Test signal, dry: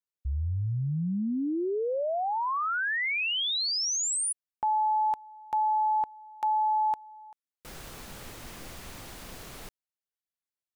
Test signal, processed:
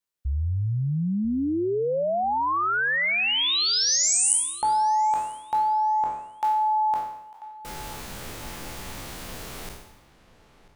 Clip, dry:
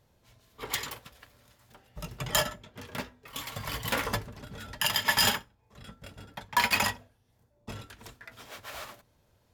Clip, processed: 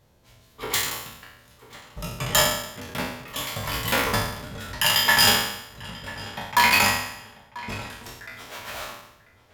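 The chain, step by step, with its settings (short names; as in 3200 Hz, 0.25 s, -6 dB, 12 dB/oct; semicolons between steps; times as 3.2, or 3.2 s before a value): spectral trails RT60 0.80 s; darkening echo 0.99 s, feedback 34%, low-pass 3100 Hz, level -17.5 dB; gain +4 dB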